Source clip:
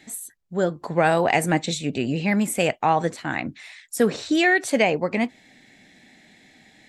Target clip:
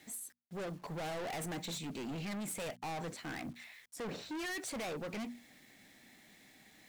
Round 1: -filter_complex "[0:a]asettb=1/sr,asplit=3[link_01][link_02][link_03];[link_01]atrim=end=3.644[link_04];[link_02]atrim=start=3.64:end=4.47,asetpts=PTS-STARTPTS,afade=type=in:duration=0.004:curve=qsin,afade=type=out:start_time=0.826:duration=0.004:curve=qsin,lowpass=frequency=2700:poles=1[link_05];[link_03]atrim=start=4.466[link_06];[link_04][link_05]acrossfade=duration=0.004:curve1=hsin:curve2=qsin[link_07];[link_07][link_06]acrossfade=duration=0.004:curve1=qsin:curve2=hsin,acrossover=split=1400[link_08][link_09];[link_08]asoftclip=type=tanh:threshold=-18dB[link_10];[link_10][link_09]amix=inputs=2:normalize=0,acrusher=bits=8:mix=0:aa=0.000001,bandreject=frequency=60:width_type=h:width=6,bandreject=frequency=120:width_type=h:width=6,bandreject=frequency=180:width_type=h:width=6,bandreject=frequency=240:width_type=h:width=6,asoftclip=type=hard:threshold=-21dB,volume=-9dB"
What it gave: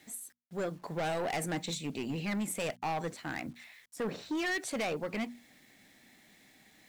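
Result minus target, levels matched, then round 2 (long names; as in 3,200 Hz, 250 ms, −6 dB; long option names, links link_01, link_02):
hard clipping: distortion −6 dB
-filter_complex "[0:a]asettb=1/sr,asplit=3[link_01][link_02][link_03];[link_01]atrim=end=3.644[link_04];[link_02]atrim=start=3.64:end=4.47,asetpts=PTS-STARTPTS,afade=type=in:duration=0.004:curve=qsin,afade=type=out:start_time=0.826:duration=0.004:curve=qsin,lowpass=frequency=2700:poles=1[link_05];[link_03]atrim=start=4.466[link_06];[link_04][link_05]acrossfade=duration=0.004:curve1=hsin:curve2=qsin[link_07];[link_07][link_06]acrossfade=duration=0.004:curve1=qsin:curve2=hsin,acrossover=split=1400[link_08][link_09];[link_08]asoftclip=type=tanh:threshold=-18dB[link_10];[link_10][link_09]amix=inputs=2:normalize=0,acrusher=bits=8:mix=0:aa=0.000001,bandreject=frequency=60:width_type=h:width=6,bandreject=frequency=120:width_type=h:width=6,bandreject=frequency=180:width_type=h:width=6,bandreject=frequency=240:width_type=h:width=6,asoftclip=type=hard:threshold=-29.5dB,volume=-9dB"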